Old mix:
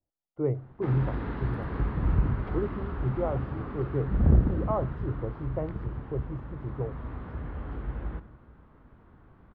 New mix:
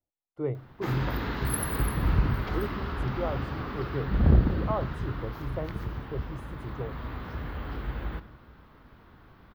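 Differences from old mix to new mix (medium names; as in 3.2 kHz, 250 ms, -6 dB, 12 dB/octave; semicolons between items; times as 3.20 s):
speech -4.5 dB; master: remove tape spacing loss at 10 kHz 43 dB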